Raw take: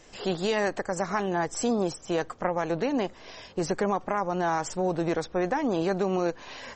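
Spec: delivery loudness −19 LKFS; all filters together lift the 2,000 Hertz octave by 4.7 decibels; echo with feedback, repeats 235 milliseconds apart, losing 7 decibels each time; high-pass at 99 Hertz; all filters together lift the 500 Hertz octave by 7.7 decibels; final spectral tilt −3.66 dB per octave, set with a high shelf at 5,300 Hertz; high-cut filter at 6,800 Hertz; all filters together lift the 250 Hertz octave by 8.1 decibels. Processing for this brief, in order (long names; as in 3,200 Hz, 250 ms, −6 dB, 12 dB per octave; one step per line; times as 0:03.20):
high-pass filter 99 Hz
low-pass filter 6,800 Hz
parametric band 250 Hz +9 dB
parametric band 500 Hz +6.5 dB
parametric band 2,000 Hz +4.5 dB
high-shelf EQ 5,300 Hz +7 dB
repeating echo 235 ms, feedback 45%, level −7 dB
level +1.5 dB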